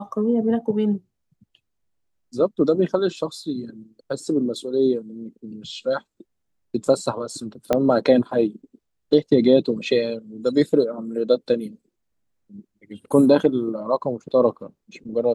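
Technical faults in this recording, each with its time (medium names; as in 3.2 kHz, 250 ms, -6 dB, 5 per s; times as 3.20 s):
7.73 s: pop -7 dBFS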